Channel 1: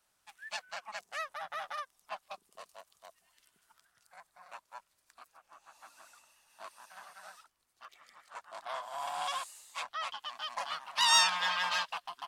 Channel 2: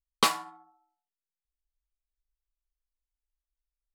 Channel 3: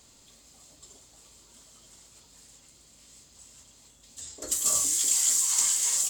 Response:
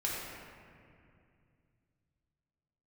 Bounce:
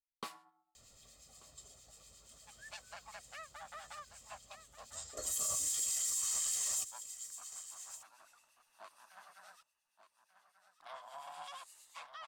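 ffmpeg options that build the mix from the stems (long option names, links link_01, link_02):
-filter_complex "[0:a]acrossover=split=120[link_01][link_02];[link_02]acompressor=threshold=-41dB:ratio=3[link_03];[link_01][link_03]amix=inputs=2:normalize=0,adelay=2200,volume=-4dB,asplit=3[link_04][link_05][link_06];[link_04]atrim=end=9.63,asetpts=PTS-STARTPTS,afade=type=out:start_time=9.626:duration=0.004:curve=hsin[link_07];[link_05]atrim=start=9.63:end=10.8,asetpts=PTS-STARTPTS,volume=0[link_08];[link_06]atrim=start=10.8,asetpts=PTS-STARTPTS,afade=type=in:duration=0.004:curve=hsin[link_09];[link_07][link_08][link_09]concat=n=3:v=0:a=1,asplit=2[link_10][link_11];[link_11]volume=-11.5dB[link_12];[1:a]volume=-19.5dB,asplit=2[link_13][link_14];[link_14]volume=-22.5dB[link_15];[2:a]aecho=1:1:1.6:0.6,adelay=750,volume=-4.5dB,asplit=2[link_16][link_17];[link_17]volume=-18.5dB[link_18];[link_12][link_15][link_18]amix=inputs=3:normalize=0,aecho=0:1:1187:1[link_19];[link_10][link_13][link_16][link_19]amix=inputs=4:normalize=0,acrossover=split=1800[link_20][link_21];[link_20]aeval=exprs='val(0)*(1-0.5/2+0.5/2*cos(2*PI*8.5*n/s))':channel_layout=same[link_22];[link_21]aeval=exprs='val(0)*(1-0.5/2-0.5/2*cos(2*PI*8.5*n/s))':channel_layout=same[link_23];[link_22][link_23]amix=inputs=2:normalize=0,alimiter=level_in=2.5dB:limit=-24dB:level=0:latency=1:release=24,volume=-2.5dB"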